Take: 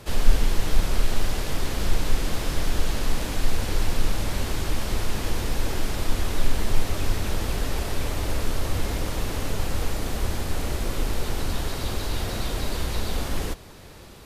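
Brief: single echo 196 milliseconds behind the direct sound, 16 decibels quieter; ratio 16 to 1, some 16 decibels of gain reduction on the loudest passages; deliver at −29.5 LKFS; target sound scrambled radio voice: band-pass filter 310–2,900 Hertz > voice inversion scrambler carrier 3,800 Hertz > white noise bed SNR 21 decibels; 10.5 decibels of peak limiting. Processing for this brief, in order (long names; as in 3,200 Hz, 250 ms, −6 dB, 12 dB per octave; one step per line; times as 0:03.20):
downward compressor 16 to 1, threshold −22 dBFS
brickwall limiter −26 dBFS
band-pass filter 310–2,900 Hz
single-tap delay 196 ms −16 dB
voice inversion scrambler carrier 3,800 Hz
white noise bed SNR 21 dB
level +12 dB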